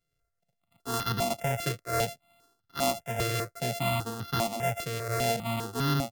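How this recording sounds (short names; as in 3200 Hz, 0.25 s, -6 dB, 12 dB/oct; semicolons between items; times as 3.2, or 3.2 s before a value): a buzz of ramps at a fixed pitch in blocks of 64 samples; notches that jump at a steady rate 5 Hz 220–2300 Hz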